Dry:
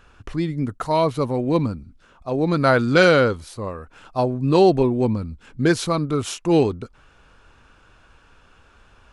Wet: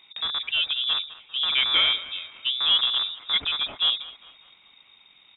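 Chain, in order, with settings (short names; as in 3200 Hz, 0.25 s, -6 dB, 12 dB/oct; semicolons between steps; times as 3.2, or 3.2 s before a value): rattling part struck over -24 dBFS, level -18 dBFS; in parallel at -5.5 dB: soft clip -20 dBFS, distortion -8 dB; on the sum: thinning echo 0.343 s, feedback 53%, high-pass 500 Hz, level -15 dB; tempo 1.7×; inverted band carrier 3700 Hz; gain -7.5 dB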